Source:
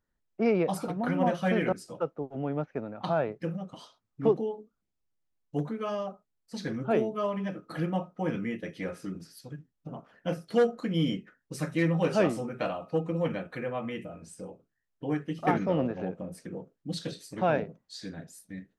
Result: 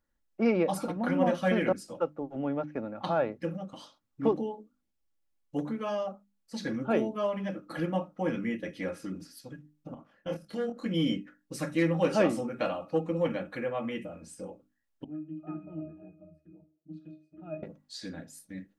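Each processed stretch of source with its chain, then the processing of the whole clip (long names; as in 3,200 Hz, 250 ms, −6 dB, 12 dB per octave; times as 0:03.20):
0:09.94–0:10.86: output level in coarse steps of 17 dB + double-tracking delay 25 ms −3 dB
0:15.04–0:17.63: resonances in every octave D#, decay 0.3 s + delay with a band-pass on its return 62 ms, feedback 62%, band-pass 660 Hz, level −19.5 dB
whole clip: mains-hum notches 50/100/150/200/250/300 Hz; comb filter 3.6 ms, depth 40%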